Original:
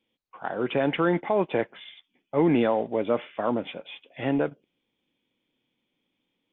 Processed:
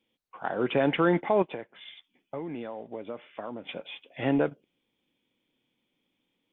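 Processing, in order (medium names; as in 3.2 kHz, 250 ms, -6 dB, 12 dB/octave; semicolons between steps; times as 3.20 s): 1.42–3.69 s: compression 6:1, threshold -35 dBFS, peak gain reduction 16.5 dB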